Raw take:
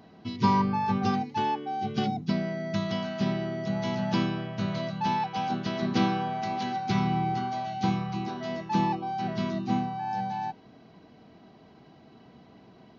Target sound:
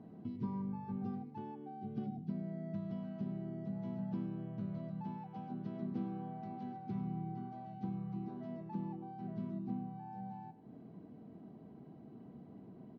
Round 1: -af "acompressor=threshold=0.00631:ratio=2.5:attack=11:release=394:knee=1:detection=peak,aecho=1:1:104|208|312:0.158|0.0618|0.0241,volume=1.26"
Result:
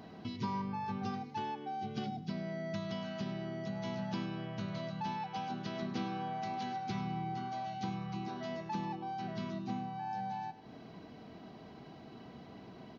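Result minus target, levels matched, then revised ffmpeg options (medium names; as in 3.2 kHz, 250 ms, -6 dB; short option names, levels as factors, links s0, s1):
250 Hz band -3.0 dB
-af "acompressor=threshold=0.00631:ratio=2.5:attack=11:release=394:knee=1:detection=peak,bandpass=f=200:t=q:w=0.85:csg=0,aecho=1:1:104|208|312:0.158|0.0618|0.0241,volume=1.26"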